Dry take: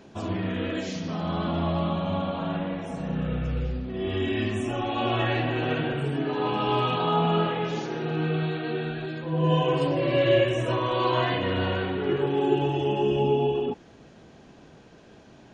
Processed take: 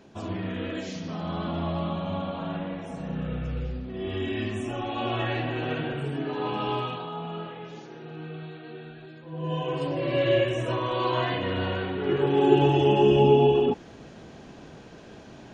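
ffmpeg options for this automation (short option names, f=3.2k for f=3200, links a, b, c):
-af "volume=14dB,afade=t=out:st=6.66:d=0.43:silence=0.354813,afade=t=in:st=9.22:d=0.99:silence=0.316228,afade=t=in:st=11.96:d=0.67:silence=0.446684"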